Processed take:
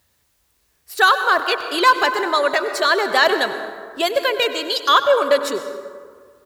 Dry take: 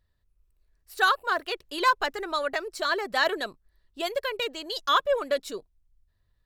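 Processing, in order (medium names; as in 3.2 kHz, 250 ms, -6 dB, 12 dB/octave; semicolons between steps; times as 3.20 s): high-pass 58 Hz 24 dB/octave; bass shelf 110 Hz -9.5 dB; in parallel at -2 dB: peak limiter -20.5 dBFS, peak gain reduction 10 dB; on the sum: word length cut 12-bit, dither triangular; on a send: delay 97 ms -17.5 dB; on the sum: plate-style reverb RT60 1.9 s, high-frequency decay 0.45×, pre-delay 110 ms, DRR 9 dB; trim +6 dB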